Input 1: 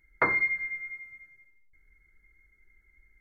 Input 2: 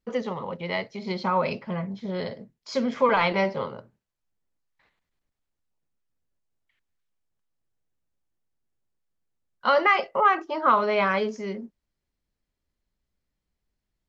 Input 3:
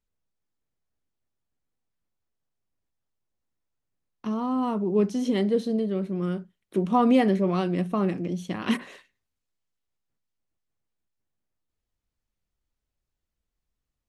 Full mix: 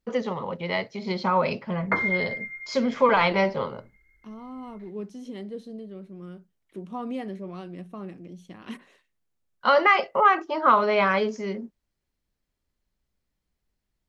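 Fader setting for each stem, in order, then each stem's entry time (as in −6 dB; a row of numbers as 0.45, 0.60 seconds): 0.0, +1.5, −13.0 decibels; 1.70, 0.00, 0.00 seconds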